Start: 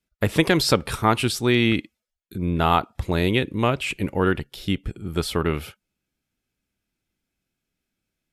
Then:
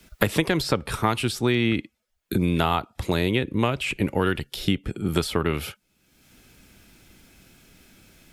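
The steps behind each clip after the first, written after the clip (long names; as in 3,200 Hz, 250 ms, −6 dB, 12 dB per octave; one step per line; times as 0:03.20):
multiband upward and downward compressor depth 100%
level −2.5 dB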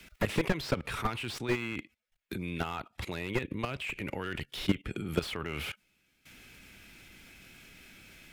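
parametric band 2,300 Hz +9.5 dB 1.3 octaves
output level in coarse steps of 18 dB
slew-rate limiting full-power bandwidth 54 Hz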